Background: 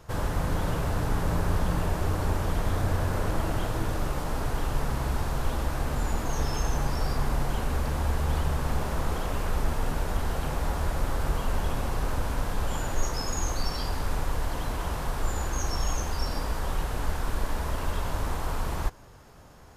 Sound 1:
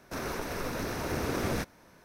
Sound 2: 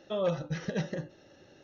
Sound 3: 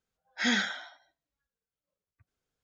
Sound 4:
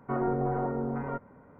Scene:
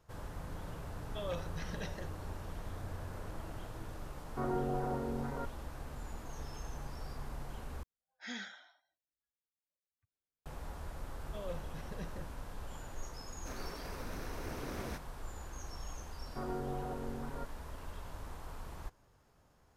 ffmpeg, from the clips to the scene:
-filter_complex "[2:a]asplit=2[a][b];[4:a]asplit=2[c][d];[0:a]volume=-16.5dB[e];[a]tiltshelf=f=970:g=-5[f];[e]asplit=2[g][h];[g]atrim=end=7.834[i];[3:a]atrim=end=2.63,asetpts=PTS-STARTPTS,volume=-16.5dB[j];[h]atrim=start=10.456[k];[f]atrim=end=1.63,asetpts=PTS-STARTPTS,volume=-8.5dB,afade=t=in:d=0.004:c=hsin,afade=t=out:st=1.626:d=0.004:c=hsin,adelay=1050[l];[c]atrim=end=1.59,asetpts=PTS-STARTPTS,volume=-6.5dB,afade=t=in:d=0.004:c=hsin,afade=t=out:st=1.586:d=0.004:c=hsin,adelay=4280[m];[b]atrim=end=1.63,asetpts=PTS-STARTPTS,volume=-14dB,afade=t=in:d=0.004:c=hsin,afade=t=out:st=1.626:d=0.004:c=hsin,adelay=11230[n];[1:a]atrim=end=2.04,asetpts=PTS-STARTPTS,volume=-11.5dB,afade=t=in:d=0.004:c=hsin,afade=t=out:st=2.036:d=0.004:c=hsin,adelay=13340[o];[d]atrim=end=1.59,asetpts=PTS-STARTPTS,volume=-11dB,afade=t=in:d=0.004:c=hsin,afade=t=out:st=1.586:d=0.004:c=hsin,adelay=16270[p];[i][j]acrossfade=d=0.004:c1=hsin:c2=hsin[q];[q][k]acrossfade=d=0.004:c1=hsin:c2=hsin[r];[r][l][m][n][o][p]amix=inputs=6:normalize=0"

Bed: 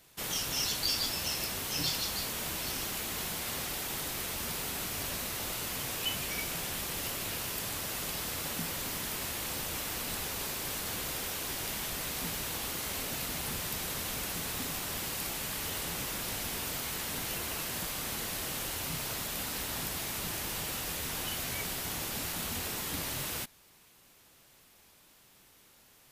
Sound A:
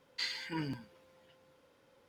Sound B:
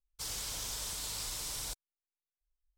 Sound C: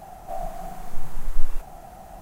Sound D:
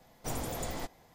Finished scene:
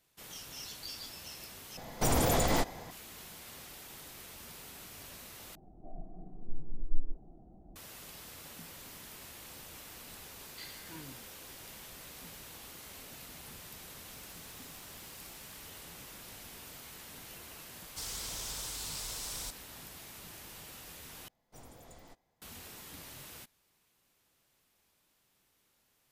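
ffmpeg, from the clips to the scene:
-filter_complex "[4:a]asplit=2[a][b];[2:a]asplit=2[c][d];[0:a]volume=-13dB[e];[a]alimiter=level_in=32dB:limit=-1dB:release=50:level=0:latency=1[f];[3:a]lowpass=f=320:t=q:w=2.7[g];[1:a]aeval=exprs='val(0)+0.5*0.00299*sgn(val(0))':c=same[h];[c]acompressor=threshold=-55dB:ratio=6:attack=3.2:release=140:knee=1:detection=peak[i];[e]asplit=4[j][k][l][m];[j]atrim=end=1.774[n];[f]atrim=end=1.14,asetpts=PTS-STARTPTS,volume=-17.5dB[o];[k]atrim=start=2.906:end=5.554[p];[g]atrim=end=2.21,asetpts=PTS-STARTPTS,volume=-10.5dB[q];[l]atrim=start=7.756:end=21.284[r];[b]atrim=end=1.14,asetpts=PTS-STARTPTS,volume=-17.5dB[s];[m]atrim=start=22.416[t];[h]atrim=end=2.08,asetpts=PTS-STARTPTS,volume=-12.5dB,afade=t=in:d=0.004:c=hsin,afade=t=out:st=2.076:d=0.004:c=hsin,adelay=10390[u];[i]atrim=end=2.77,asetpts=PTS-STARTPTS,volume=-4.5dB,afade=t=in:d=0.004:c=hsin,afade=t=out:st=2.766:d=0.004:c=hsin,adelay=13920[v];[d]atrim=end=2.77,asetpts=PTS-STARTPTS,volume=-1.5dB,afade=t=in:d=0.004:c=hsin,afade=t=out:st=2.766:d=0.004:c=hsin,adelay=17770[w];[n][o]acrossfade=d=0.004:c1=hsin:c2=hsin[x];[x][p]acrossfade=d=0.004:c1=hsin:c2=hsin[y];[y][q]acrossfade=d=0.004:c1=hsin:c2=hsin[z];[z][r]acrossfade=d=0.004:c1=hsin:c2=hsin[aa];[aa][s]acrossfade=d=0.004:c1=hsin:c2=hsin[ab];[ab][t]acrossfade=d=0.004:c1=hsin:c2=hsin[ac];[ac][u][v][w]amix=inputs=4:normalize=0"

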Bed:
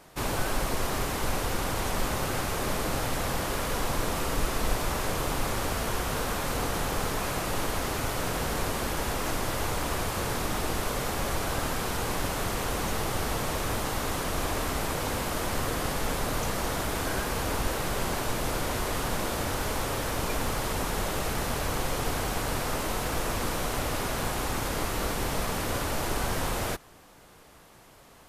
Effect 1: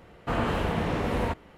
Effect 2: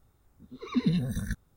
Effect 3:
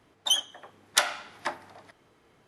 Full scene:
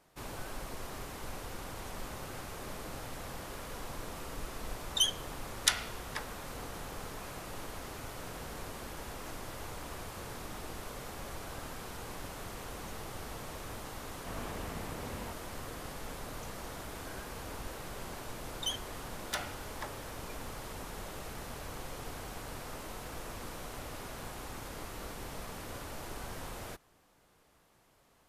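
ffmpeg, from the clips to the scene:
-filter_complex "[3:a]asplit=2[a][b];[0:a]volume=-13.5dB[c];[a]tiltshelf=f=970:g=-9[d];[b]asoftclip=type=hard:threshold=-15dB[e];[d]atrim=end=2.47,asetpts=PTS-STARTPTS,volume=-11.5dB,afade=t=in:d=0.004:c=hsin,afade=t=out:st=2.466:d=0.004:c=hsin,adelay=4700[f];[1:a]atrim=end=1.57,asetpts=PTS-STARTPTS,volume=-16.5dB,afade=t=in:d=0.004:c=hsin,afade=t=out:st=1.566:d=0.004:c=hsin,adelay=13990[g];[e]atrim=end=2.47,asetpts=PTS-STARTPTS,volume=-11.5dB,afade=t=in:d=0.004:c=hsin,afade=t=out:st=2.466:d=0.004:c=hsin,adelay=18360[h];[c][f][g][h]amix=inputs=4:normalize=0"

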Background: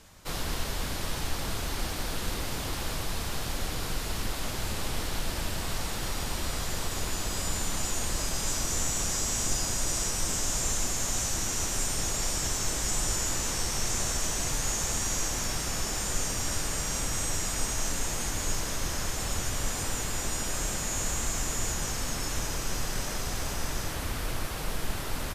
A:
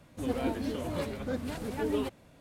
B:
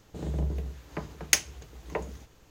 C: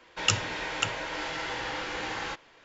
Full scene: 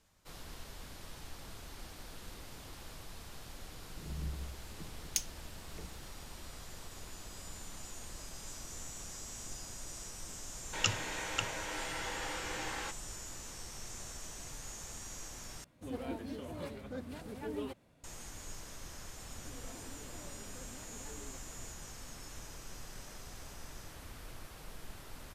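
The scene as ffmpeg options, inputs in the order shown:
-filter_complex "[1:a]asplit=2[a][b];[0:a]volume=-16.5dB[c];[2:a]acrossover=split=340|3000[d][e][f];[e]acompressor=threshold=-55dB:ratio=6:attack=3.2:release=140:knee=2.83:detection=peak[g];[d][g][f]amix=inputs=3:normalize=0[h];[b]acompressor=threshold=-50dB:ratio=6:attack=3.2:release=140:knee=1:detection=peak[i];[c]asplit=2[j][k];[j]atrim=end=15.644[l];[a]atrim=end=2.4,asetpts=PTS-STARTPTS,volume=-9dB[m];[k]atrim=start=18.036[n];[h]atrim=end=2.5,asetpts=PTS-STARTPTS,volume=-10dB,afade=t=in:d=0.004:c=hsin,afade=t=out:st=2.496:d=0.004:c=hsin,adelay=3830[o];[3:a]atrim=end=2.64,asetpts=PTS-STARTPTS,volume=-6.5dB,afade=t=in:d=0.004:c=hsin,afade=t=out:st=2.636:d=0.004:c=hsin,adelay=10560[p];[i]atrim=end=2.4,asetpts=PTS-STARTPTS,volume=-1.5dB,afade=t=in:d=0.004:c=hsin,afade=t=out:st=2.396:d=0.004:c=hsin,adelay=19280[q];[l][m]acrossfade=d=0.004:c1=hsin:c2=hsin[r];[r][n]acrossfade=d=0.004:c1=hsin:c2=hsin[s];[s][o][p][q]amix=inputs=4:normalize=0"

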